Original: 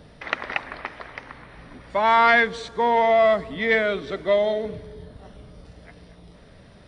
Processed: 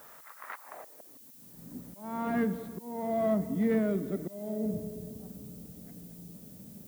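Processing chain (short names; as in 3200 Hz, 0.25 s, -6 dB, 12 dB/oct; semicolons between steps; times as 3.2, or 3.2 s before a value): CVSD 32 kbps; Schroeder reverb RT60 1.9 s, combs from 29 ms, DRR 14.5 dB; auto swell 0.488 s; band-pass sweep 1200 Hz -> 210 Hz, 0.56–1.26; added noise violet -60 dBFS; gain +6 dB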